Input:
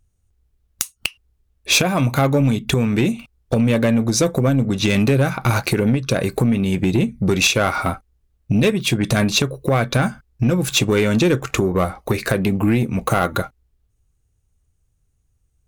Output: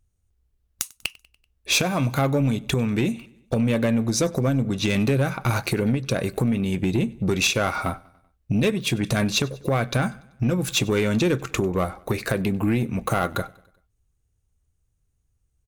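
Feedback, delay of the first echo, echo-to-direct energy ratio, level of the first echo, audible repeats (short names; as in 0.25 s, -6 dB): 55%, 96 ms, -22.5 dB, -24.0 dB, 3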